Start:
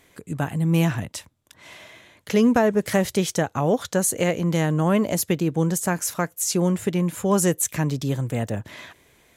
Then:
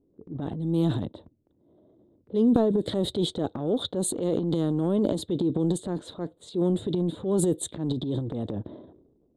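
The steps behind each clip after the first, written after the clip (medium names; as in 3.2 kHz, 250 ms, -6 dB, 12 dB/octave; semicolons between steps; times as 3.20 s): level-controlled noise filter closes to 340 Hz, open at -17 dBFS; FFT filter 140 Hz 0 dB, 340 Hz +11 dB, 2.5 kHz -21 dB, 3.7 kHz +10 dB, 5.7 kHz -24 dB, 8.6 kHz -3 dB, 12 kHz -16 dB; transient shaper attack -6 dB, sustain +10 dB; trim -9 dB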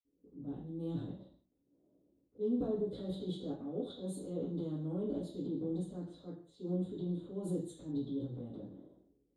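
reverberation, pre-delay 46 ms; trim -7 dB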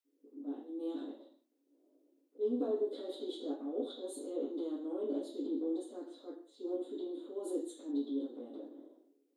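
brick-wall FIR high-pass 240 Hz; trim +2.5 dB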